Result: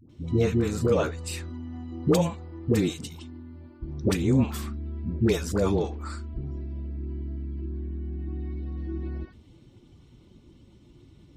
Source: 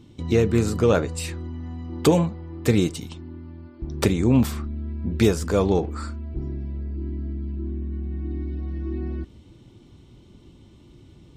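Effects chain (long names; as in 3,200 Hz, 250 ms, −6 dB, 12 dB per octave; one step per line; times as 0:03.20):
spectral magnitudes quantised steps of 15 dB
all-pass dispersion highs, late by 96 ms, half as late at 590 Hz
level −3.5 dB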